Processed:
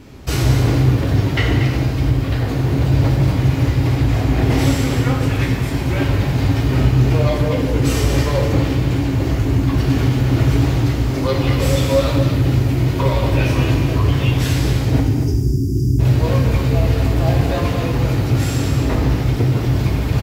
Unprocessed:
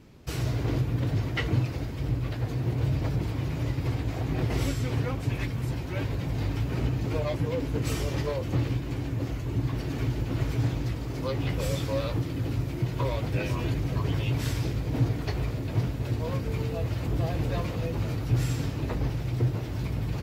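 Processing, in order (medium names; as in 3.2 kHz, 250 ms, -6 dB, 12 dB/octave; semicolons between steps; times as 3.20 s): spectral selection erased 15.01–15.99 s, 420–4700 Hz; in parallel at +1.5 dB: peak limiter -20.5 dBFS, peak gain reduction 7.5 dB; on the sum: gain riding within 4 dB 2 s; short-mantissa float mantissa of 6-bit; on a send: delay 235 ms -9.5 dB; on the sum: gated-style reverb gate 370 ms falling, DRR 0.5 dB; trim +3 dB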